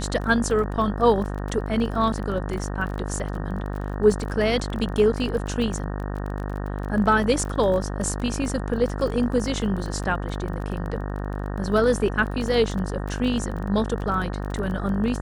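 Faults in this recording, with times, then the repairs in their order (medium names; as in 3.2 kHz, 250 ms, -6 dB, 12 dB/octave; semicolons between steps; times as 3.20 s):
buzz 50 Hz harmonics 37 -29 dBFS
crackle 25 per s -30 dBFS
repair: de-click; de-hum 50 Hz, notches 37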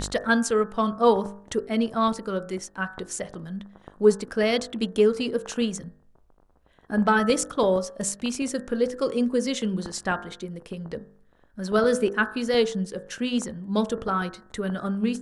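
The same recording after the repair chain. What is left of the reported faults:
nothing left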